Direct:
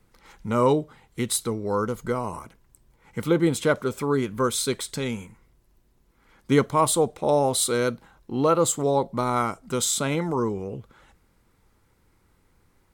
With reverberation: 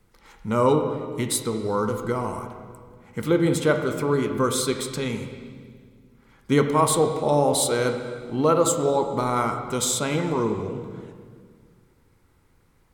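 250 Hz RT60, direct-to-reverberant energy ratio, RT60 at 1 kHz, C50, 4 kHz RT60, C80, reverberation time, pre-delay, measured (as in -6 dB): 2.4 s, 5.0 dB, 1.7 s, 6.5 dB, 1.7 s, 8.0 dB, 1.9 s, 15 ms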